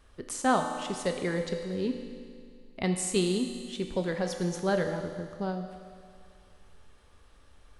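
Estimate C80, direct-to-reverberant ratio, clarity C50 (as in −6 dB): 6.5 dB, 3.5 dB, 5.0 dB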